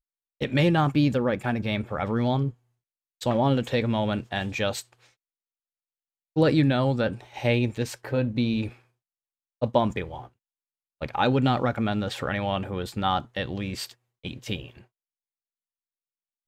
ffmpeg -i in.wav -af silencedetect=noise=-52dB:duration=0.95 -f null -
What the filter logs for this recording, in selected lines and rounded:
silence_start: 5.10
silence_end: 6.36 | silence_duration: 1.26
silence_start: 14.84
silence_end: 16.48 | silence_duration: 1.63